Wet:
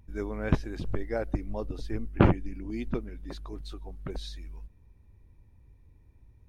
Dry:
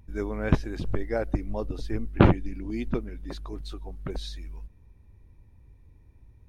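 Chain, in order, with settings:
0:02.08–0:02.73: parametric band 3,800 Hz −8 dB 0.31 octaves
level −3 dB

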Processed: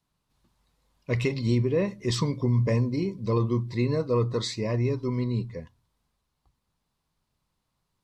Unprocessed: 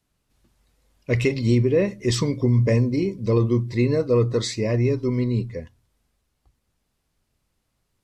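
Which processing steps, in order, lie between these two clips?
graphic EQ with 15 bands 160 Hz +6 dB, 1,000 Hz +9 dB, 4,000 Hz +5 dB
level −7 dB

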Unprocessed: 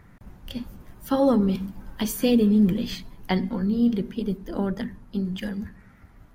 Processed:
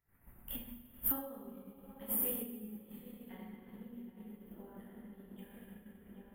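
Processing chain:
Butterworth band-reject 5,400 Hz, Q 0.64
high-shelf EQ 6,400 Hz +5 dB
feedback echo with a low-pass in the loop 780 ms, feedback 59%, low-pass 2,000 Hz, level −8.5 dB
dense smooth reverb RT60 2.2 s, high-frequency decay 0.9×, DRR −9 dB
downward compressor 8 to 1, threshold −35 dBFS, peak gain reduction 29.5 dB
first-order pre-emphasis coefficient 0.8
downward expander −42 dBFS
level +8 dB

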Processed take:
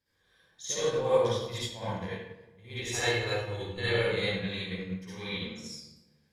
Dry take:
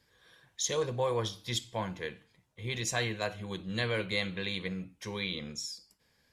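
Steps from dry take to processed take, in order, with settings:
0:02.78–0:04.00: comb filter 2.3 ms, depth 80%
convolution reverb RT60 1.2 s, pre-delay 52 ms, DRR −11 dB
expander for the loud parts 1.5 to 1, over −33 dBFS
level −5.5 dB

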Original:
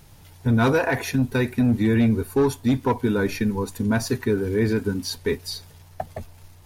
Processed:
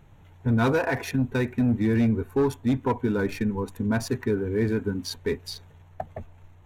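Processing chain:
adaptive Wiener filter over 9 samples
level −3 dB

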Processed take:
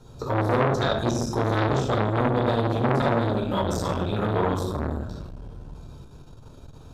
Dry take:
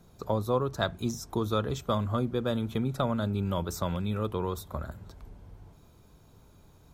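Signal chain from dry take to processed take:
low-pass filter 9,400 Hz 12 dB per octave
parametric band 2,100 Hz −12 dB 0.25 octaves
in parallel at −1 dB: brickwall limiter −22.5 dBFS, peak gain reduction 9 dB
on the sum: convolution reverb RT60 1.0 s, pre-delay 9 ms, DRR −4.5 dB
saturating transformer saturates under 1,100 Hz
level −1.5 dB

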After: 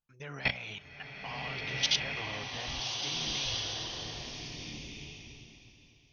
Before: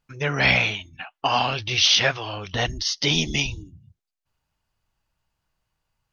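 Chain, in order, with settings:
output level in coarse steps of 17 dB
slow-attack reverb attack 1,620 ms, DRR −1 dB
level −8.5 dB

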